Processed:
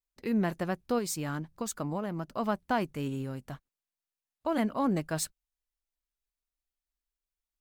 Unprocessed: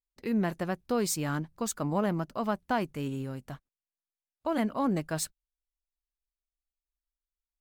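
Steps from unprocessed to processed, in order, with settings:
0:00.98–0:02.29: downward compressor, threshold −30 dBFS, peak gain reduction 7 dB

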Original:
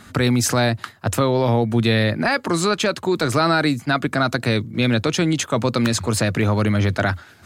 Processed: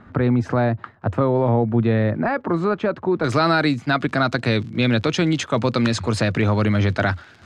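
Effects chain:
surface crackle 62 per second −31 dBFS
low-pass filter 1,300 Hz 12 dB per octave, from 0:03.24 4,900 Hz

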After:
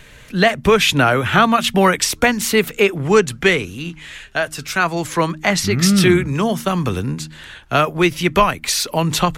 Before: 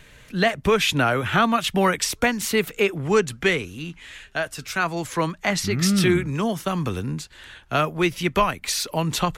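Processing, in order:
hum removal 77.64 Hz, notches 4
level +6 dB

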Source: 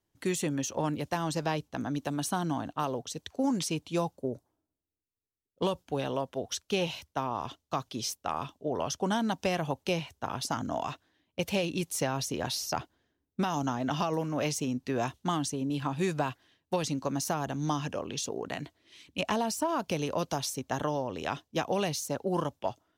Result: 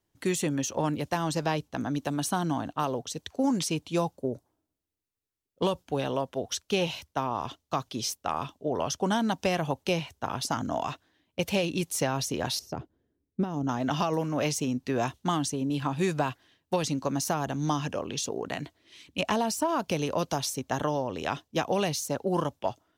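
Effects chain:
0:12.59–0:13.69: drawn EQ curve 450 Hz 0 dB, 790 Hz −10 dB, 3,800 Hz −17 dB
level +2.5 dB

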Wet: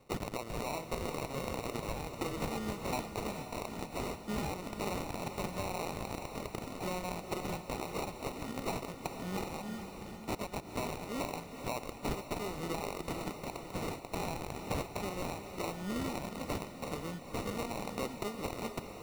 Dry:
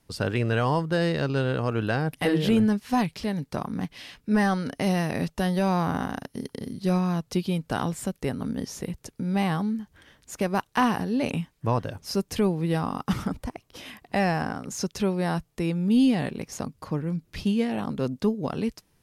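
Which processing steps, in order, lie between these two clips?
meter weighting curve ITU-R 468
downward compressor 6 to 1, threshold −35 dBFS, peak gain reduction 16.5 dB
decimation without filtering 27×
wrap-around overflow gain 25.5 dB
feedback delay with all-pass diffusion 451 ms, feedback 51%, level −8 dB
level +1 dB

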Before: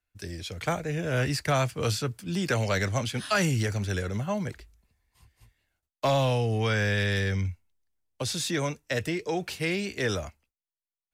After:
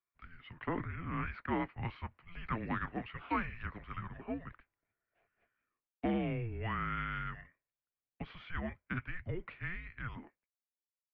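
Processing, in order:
fade-out on the ending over 1.82 s
single-sideband voice off tune −350 Hz 330–2,800 Hz
0:00.64–0:01.31: level that may fall only so fast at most 53 dB per second
level −7.5 dB

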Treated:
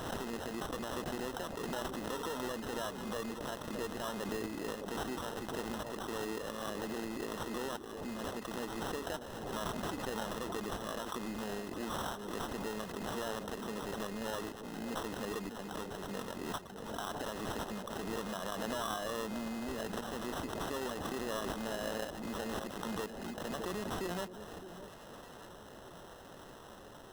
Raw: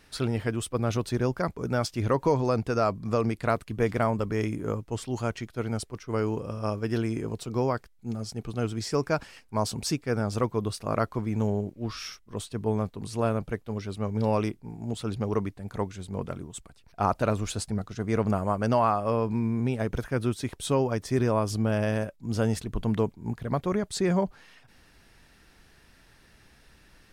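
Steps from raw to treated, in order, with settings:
one scale factor per block 5 bits
soft clipping −24.5 dBFS, distortion −9 dB
low-shelf EQ 420 Hz −9 dB
downward compressor 2.5 to 1, threshold −46 dBFS, peak gain reduction 12 dB
high-shelf EQ 6,300 Hz +9 dB
brickwall limiter −35 dBFS, peak gain reduction 8 dB
Butterworth high-pass 190 Hz
sample-rate reduction 2,300 Hz, jitter 0%
on a send: delay that swaps between a low-pass and a high-pass 610 ms, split 800 Hz, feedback 60%, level −11 dB
on the sum: background raised ahead of every attack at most 35 dB per second
level +6 dB

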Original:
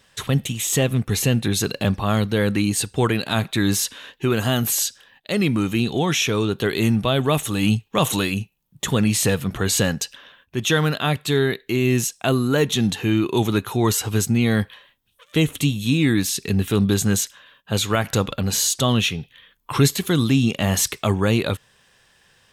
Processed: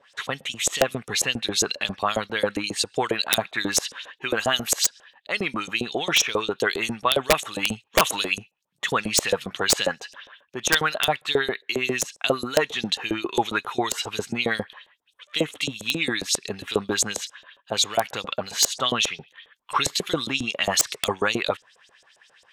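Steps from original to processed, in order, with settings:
auto-filter band-pass saw up 7.4 Hz 500–8,000 Hz
0:17.01–0:18.28: dynamic equaliser 1,400 Hz, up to −5 dB, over −48 dBFS, Q 1.4
wrap-around overflow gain 16.5 dB
level +8.5 dB

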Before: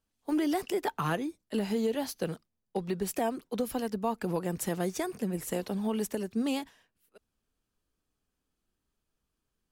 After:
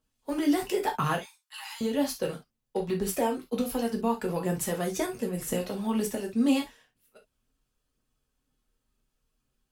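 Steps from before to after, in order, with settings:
0:01.18–0:01.81: Butterworth high-pass 830 Hz 72 dB per octave
phase shifter 2 Hz, delay 2.3 ms, feedback 35%
convolution reverb, pre-delay 3 ms, DRR 0.5 dB

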